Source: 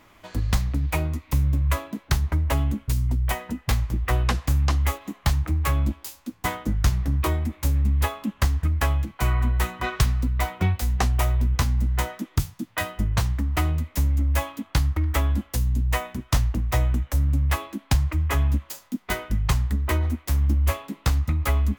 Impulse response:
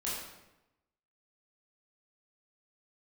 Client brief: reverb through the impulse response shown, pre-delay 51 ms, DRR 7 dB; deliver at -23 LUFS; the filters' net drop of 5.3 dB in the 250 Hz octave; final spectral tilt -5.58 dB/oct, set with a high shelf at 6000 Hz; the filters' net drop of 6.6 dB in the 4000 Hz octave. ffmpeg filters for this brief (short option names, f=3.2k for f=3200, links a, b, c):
-filter_complex "[0:a]equalizer=f=250:t=o:g=-7.5,equalizer=f=4k:t=o:g=-7.5,highshelf=f=6k:g=-4,asplit=2[a][b];[1:a]atrim=start_sample=2205,adelay=51[c];[b][c]afir=irnorm=-1:irlink=0,volume=-11dB[d];[a][d]amix=inputs=2:normalize=0,volume=2.5dB"